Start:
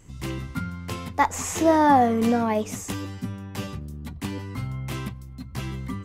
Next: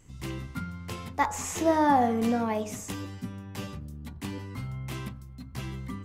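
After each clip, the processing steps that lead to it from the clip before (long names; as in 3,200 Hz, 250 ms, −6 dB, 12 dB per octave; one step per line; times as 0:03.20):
hum removal 52.73 Hz, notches 33
level −4.5 dB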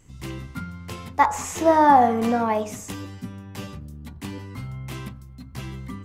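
dynamic equaliser 980 Hz, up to +7 dB, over −38 dBFS, Q 0.7
level +2 dB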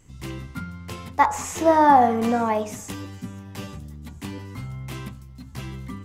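delay with a high-pass on its return 902 ms, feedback 54%, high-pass 3,300 Hz, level −20 dB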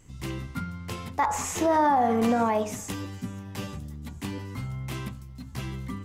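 brickwall limiter −15 dBFS, peak gain reduction 10.5 dB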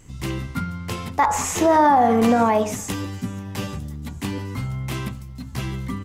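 surface crackle 13 per second −55 dBFS
single-tap delay 143 ms −24 dB
level +6.5 dB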